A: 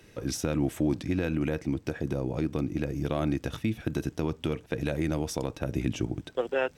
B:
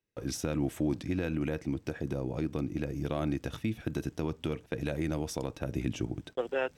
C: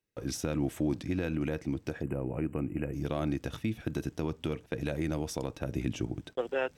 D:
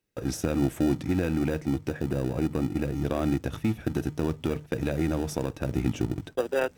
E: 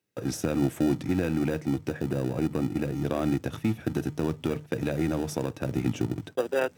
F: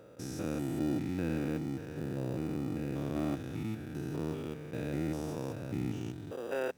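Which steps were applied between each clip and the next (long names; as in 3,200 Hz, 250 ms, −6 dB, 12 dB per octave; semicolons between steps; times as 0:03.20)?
noise gate −45 dBFS, range −30 dB; level −3.5 dB
time-frequency box erased 0:02.03–0:02.93, 3,000–7,000 Hz
dynamic equaliser 4,000 Hz, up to −5 dB, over −57 dBFS, Q 0.77; mains-hum notches 50/100/150 Hz; in parallel at −11 dB: decimation without filtering 41×; on the sum: level +4.5 dB
high-pass filter 89 Hz 24 dB per octave
spectrum averaged block by block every 200 ms; level −5 dB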